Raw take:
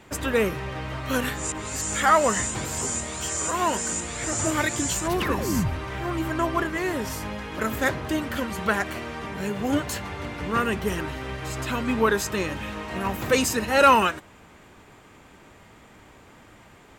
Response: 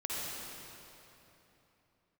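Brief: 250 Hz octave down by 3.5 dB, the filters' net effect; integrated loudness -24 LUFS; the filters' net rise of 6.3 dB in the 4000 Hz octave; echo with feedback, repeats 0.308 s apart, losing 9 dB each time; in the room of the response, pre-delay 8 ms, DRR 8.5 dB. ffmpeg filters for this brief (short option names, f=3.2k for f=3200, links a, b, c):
-filter_complex "[0:a]equalizer=f=250:t=o:g=-4.5,equalizer=f=4k:t=o:g=8.5,aecho=1:1:308|616|924|1232:0.355|0.124|0.0435|0.0152,asplit=2[a][b];[1:a]atrim=start_sample=2205,adelay=8[c];[b][c]afir=irnorm=-1:irlink=0,volume=-13dB[d];[a][d]amix=inputs=2:normalize=0,volume=-0.5dB"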